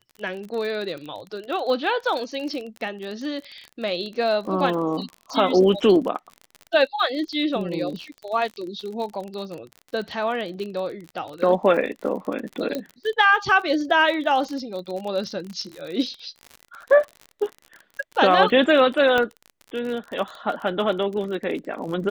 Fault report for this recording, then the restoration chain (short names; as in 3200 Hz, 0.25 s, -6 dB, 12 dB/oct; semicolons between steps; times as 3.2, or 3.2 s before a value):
crackle 39/s -30 dBFS
12.75 pop -14 dBFS
19.18 pop -9 dBFS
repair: de-click